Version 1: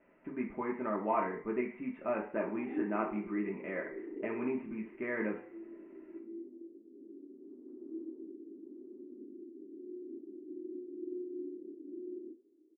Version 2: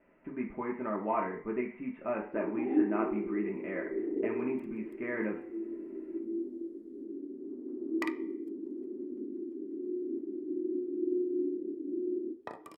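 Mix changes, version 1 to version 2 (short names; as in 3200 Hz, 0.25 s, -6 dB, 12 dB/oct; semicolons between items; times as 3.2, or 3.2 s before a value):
first sound +9.0 dB; second sound: unmuted; master: add low shelf 110 Hz +5.5 dB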